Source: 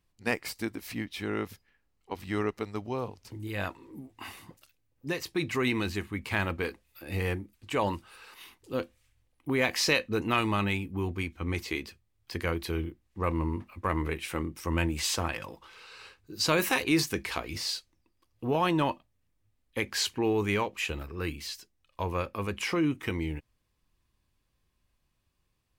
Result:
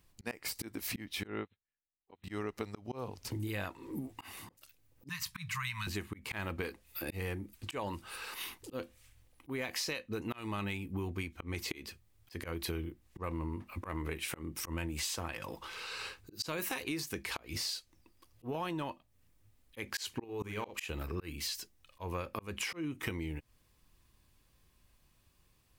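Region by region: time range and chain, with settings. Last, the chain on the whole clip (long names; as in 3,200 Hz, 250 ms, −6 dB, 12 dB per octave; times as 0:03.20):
0:01.27–0:02.24: linear-phase brick-wall low-pass 4,200 Hz + expander for the loud parts 2.5 to 1, over −54 dBFS
0:05.09–0:05.87: Chebyshev band-stop filter 190–960 Hz, order 5 + parametric band 520 Hz +8.5 dB 1 octave
0:20.24–0:20.85: compressor whose output falls as the input rises −31 dBFS, ratio −0.5 + double-tracking delay 48 ms −8 dB
whole clip: high-shelf EQ 7,700 Hz +6 dB; volume swells 363 ms; downward compressor 12 to 1, threshold −41 dBFS; level +6.5 dB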